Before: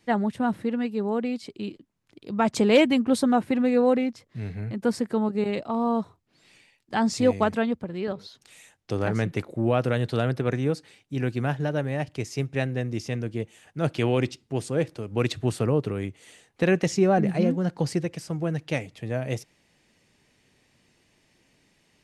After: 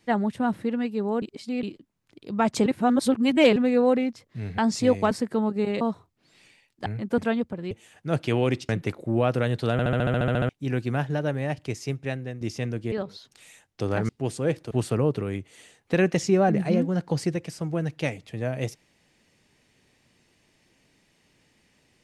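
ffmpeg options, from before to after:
-filter_complex "[0:a]asplit=27[a][b][c][d][e][f][g][h][i][j][k][l][m][n][o][p][q][r][s][t][u][v][w][x][y][z][aa];[a]atrim=end=1.222[ab];[b]atrim=start=1.218:end=1.632,asetpts=PTS-STARTPTS,areverse[ac];[c]atrim=start=1.628:end=2.662[ad];[d]atrim=start=2.658:end=3.562,asetpts=PTS-STARTPTS,areverse[ae];[e]atrim=start=3.558:end=4.582[af];[f]atrim=start=6.958:end=7.492[ag];[g]atrim=start=4.898:end=5.602[ah];[h]atrim=start=5.908:end=6.962[ai];[i]atrim=start=4.578:end=4.902[aj];[j]atrim=start=7.488:end=8.022[ak];[k]atrim=start=13.418:end=14.402[al];[l]atrim=start=9.188:end=10.292[am];[m]atrim=start=10.218:end=10.292[an];[n]atrim=start=10.218:end=10.292[ao];[o]atrim=start=10.218:end=10.292[ap];[p]atrim=start=10.218:end=10.292[aq];[q]atrim=start=10.218:end=10.292[ar];[r]atrim=start=10.218:end=10.292[as];[s]atrim=start=10.218:end=10.292[at];[t]atrim=start=10.218:end=10.292[au];[u]atrim=start=10.218:end=10.292[av];[v]atrim=start=10.218:end=10.292[aw];[w]atrim=start=10.988:end=12.91,asetpts=PTS-STARTPTS,afade=t=out:st=1.222:d=0.7:silence=0.375837[ax];[x]atrim=start=12.91:end=13.422,asetpts=PTS-STARTPTS,afade=t=in:d=0.004:c=hsin:silence=0.375837[ay];[y]atrim=start=8.018:end=9.192[az];[z]atrim=start=14.398:end=15.022[ba];[aa]atrim=start=15.398[bb];[ab][ac]acrossfade=d=0.004:c1=hsin:c2=hsin[bc];[bc][ad]acrossfade=d=0.004:c1=hsin:c2=hsin[bd];[bd][ae]acrossfade=d=0.004:c1=hsin:c2=hsin[be];[be][af]acrossfade=d=0.004:c1=hsin:c2=hsin[bf];[bf][ag]acrossfade=d=0.004:c1=hsin:c2=hsin[bg];[bg][ah]acrossfade=d=0.004:c1=hsin:c2=hsin[bh];[bh][ai]acrossfade=d=0.004:c1=hsin:c2=hsin[bi];[bi][aj]acrossfade=d=0.004:c1=hsin:c2=hsin[bj];[bj][ak]acrossfade=d=0.004:c1=hsin:c2=hsin[bk];[bk][al]acrossfade=d=0.004:c1=hsin:c2=hsin[bl];[bl][am]acrossfade=d=0.004:c1=hsin:c2=hsin[bm];[bm][an]acrossfade=d=0.004:c1=hsin:c2=hsin[bn];[bn][ao]acrossfade=d=0.004:c1=hsin:c2=hsin[bo];[bo][ap]acrossfade=d=0.004:c1=hsin:c2=hsin[bp];[bp][aq]acrossfade=d=0.004:c1=hsin:c2=hsin[bq];[bq][ar]acrossfade=d=0.004:c1=hsin:c2=hsin[br];[br][as]acrossfade=d=0.004:c1=hsin:c2=hsin[bs];[bs][at]acrossfade=d=0.004:c1=hsin:c2=hsin[bt];[bt][au]acrossfade=d=0.004:c1=hsin:c2=hsin[bu];[bu][av]acrossfade=d=0.004:c1=hsin:c2=hsin[bv];[bv][aw]acrossfade=d=0.004:c1=hsin:c2=hsin[bw];[ax][ay]concat=n=2:v=0:a=1[bx];[bw][bx]acrossfade=d=0.004:c1=hsin:c2=hsin[by];[by][az]acrossfade=d=0.004:c1=hsin:c2=hsin[bz];[bz][ba]acrossfade=d=0.004:c1=hsin:c2=hsin[ca];[ca][bb]acrossfade=d=0.004:c1=hsin:c2=hsin"

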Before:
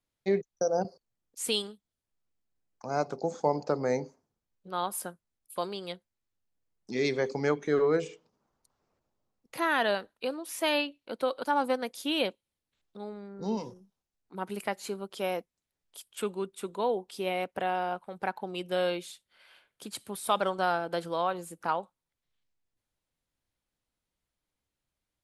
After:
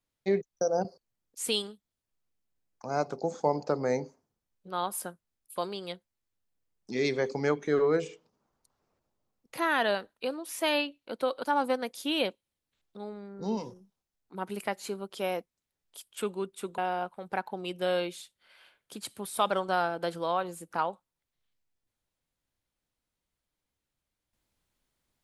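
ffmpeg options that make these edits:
-filter_complex "[0:a]asplit=2[a][b];[a]atrim=end=16.782[c];[b]atrim=start=17.678[d];[c][d]acrossfade=d=0.004:c1=hsin:c2=hsin"

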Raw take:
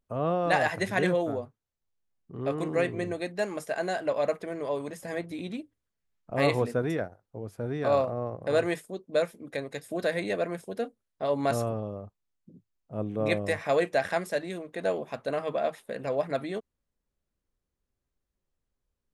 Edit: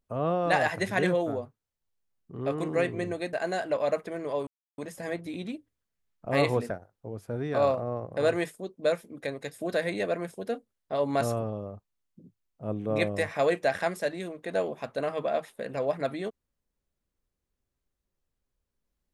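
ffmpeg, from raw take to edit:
-filter_complex "[0:a]asplit=4[a][b][c][d];[a]atrim=end=3.332[e];[b]atrim=start=3.688:end=4.83,asetpts=PTS-STARTPTS,afade=t=out:st=1.138:d=0.004:c=hsin,apad=pad_dur=0.31[f];[c]atrim=start=4.83:end=6.752,asetpts=PTS-STARTPTS,afade=t=in:d=0.004:c=hsin[g];[d]atrim=start=6.998[h];[f][g]concat=n=2:v=0:a=1[i];[e][i]acrossfade=d=0.004:c1=hsin:c2=hsin[j];[j][h]acrossfade=d=0.004:c1=hsin:c2=hsin"

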